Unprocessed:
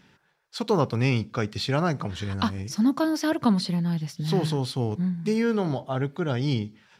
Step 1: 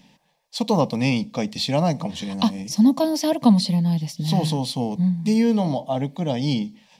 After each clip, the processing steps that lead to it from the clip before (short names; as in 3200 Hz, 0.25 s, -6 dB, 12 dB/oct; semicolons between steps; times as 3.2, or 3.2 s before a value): fixed phaser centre 380 Hz, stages 6; gain +7 dB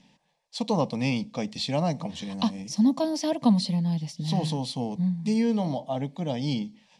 LPF 9800 Hz 24 dB/oct; gain -5.5 dB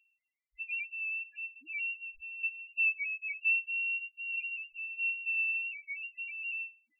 inverted band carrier 2900 Hz; loudest bins only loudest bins 1; gain -3.5 dB